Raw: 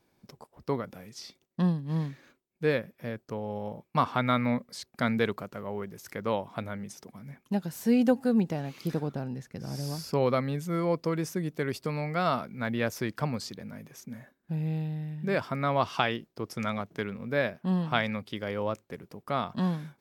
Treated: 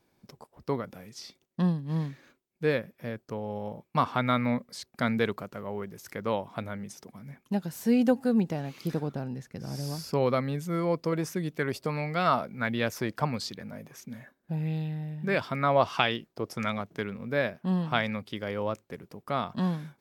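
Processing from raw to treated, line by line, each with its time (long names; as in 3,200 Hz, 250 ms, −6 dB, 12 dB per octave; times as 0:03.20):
0:11.12–0:16.72: auto-filter bell 1.5 Hz 540–3,900 Hz +7 dB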